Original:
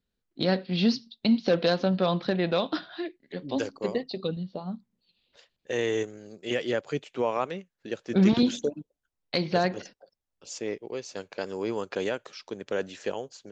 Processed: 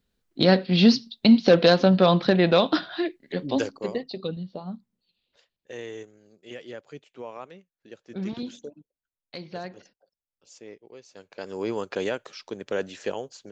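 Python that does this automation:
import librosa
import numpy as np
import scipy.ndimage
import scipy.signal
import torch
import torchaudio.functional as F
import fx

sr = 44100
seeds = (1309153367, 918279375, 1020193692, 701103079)

y = fx.gain(x, sr, db=fx.line((3.4, 7.0), (3.85, -0.5), (4.7, -0.5), (6.03, -11.5), (11.12, -11.5), (11.61, 1.5)))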